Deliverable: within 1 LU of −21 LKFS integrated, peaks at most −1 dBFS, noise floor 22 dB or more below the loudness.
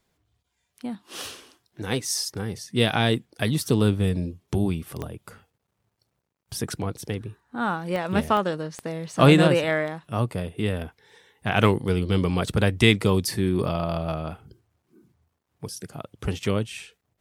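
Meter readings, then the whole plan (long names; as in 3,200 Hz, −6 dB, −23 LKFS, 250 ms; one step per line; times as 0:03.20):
number of clicks 4; integrated loudness −24.5 LKFS; sample peak −2.0 dBFS; target loudness −21.0 LKFS
→ click removal
level +3.5 dB
brickwall limiter −1 dBFS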